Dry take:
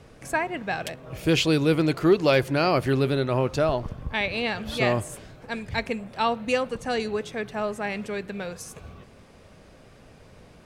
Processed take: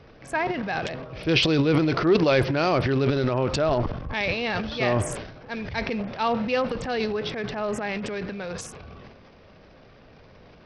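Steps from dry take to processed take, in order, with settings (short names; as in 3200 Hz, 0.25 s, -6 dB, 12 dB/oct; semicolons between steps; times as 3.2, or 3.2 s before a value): tone controls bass -2 dB, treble -5 dB; transient shaper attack -2 dB, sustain +11 dB; SBC 64 kbps 44100 Hz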